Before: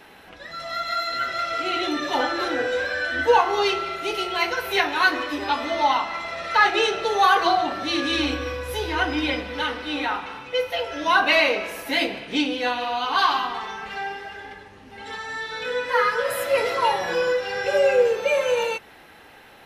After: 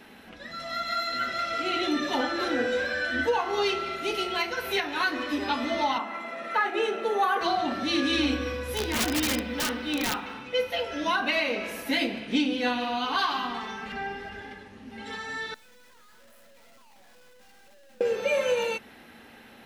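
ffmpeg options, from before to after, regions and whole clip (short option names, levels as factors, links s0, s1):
-filter_complex "[0:a]asettb=1/sr,asplit=3[s0][s1][s2];[s0]atrim=end=5.984[s3];[s1]atrim=start=5.98:end=7.41,asetpts=PTS-STARTPTS,afade=t=in:d=0.004:c=qsin,afade=t=out:st=1.426:d=0.004:c=qsin,highpass=f=210:w=0.5412,highpass=f=210:w=1.3066,equalizer=f=4800:t=o:w=1.4:g=-13[s4];[s2]atrim=start=7.406[s5];[s3][s4]acrossfade=d=0.004:c1=hsin:c2=qsin[s6];[s6][s5]acrossfade=d=0.004:c1=qsin:c2=hsin,asettb=1/sr,asplit=3[s7][s8][s9];[s7]atrim=end=8.724[s10];[s8]atrim=start=8.72:end=10.34,asetpts=PTS-STARTPTS,afade=t=in:d=0.004:c=qsin,afade=t=out:st=1.616:d=0.004:c=qsin,acrusher=bits=9:mode=log:mix=0:aa=0.000001,aeval=exprs='(mod(7.94*val(0)+1,2)-1)/7.94':c=same[s11];[s9]atrim=start=10.336[s12];[s10][s11]acrossfade=d=0.004:c1=hsin:c2=qsin[s13];[s13][s12]acrossfade=d=0.004:c1=qsin:c2=hsin,asettb=1/sr,asplit=3[s14][s15][s16];[s14]atrim=end=13.924[s17];[s15]atrim=start=13.92:end=14.42,asetpts=PTS-STARTPTS,afade=t=in:d=0.004:c=qsin,afade=t=out:st=0.496:d=0.004:c=qsin,acrossover=split=2600[s18][s19];[s19]acompressor=threshold=0.00447:ratio=4:attack=1:release=60[s20];[s18][s20]amix=inputs=2:normalize=0,lowshelf=f=130:g=10.5[s21];[s16]atrim=start=14.416[s22];[s17][s21]acrossfade=d=0.004:c1=hsin:c2=qsin[s23];[s23][s22]acrossfade=d=0.004:c1=qsin:c2=hsin,asettb=1/sr,asplit=3[s24][s25][s26];[s24]atrim=end=15.544[s27];[s25]atrim=start=15.54:end=18.01,asetpts=PTS-STARTPTS,afade=t=in:d=0.004:c=qsin,afade=t=out:st=2.466:d=0.004:c=qsin,lowshelf=f=500:t=q:w=3:g=-9.5,aeval=exprs='(tanh(79.4*val(0)+0.65)-tanh(0.65))/79.4':c=same,acrusher=bits=6:dc=4:mix=0:aa=0.000001[s28];[s26]atrim=start=18.006[s29];[s27][s28]acrossfade=d=0.004:c1=hsin:c2=qsin[s30];[s30][s29]acrossfade=d=0.004:c1=qsin:c2=hsin,equalizer=f=930:w=1.5:g=-3,alimiter=limit=0.211:level=0:latency=1:release=256,equalizer=f=230:w=4.2:g=13.5,volume=0.75"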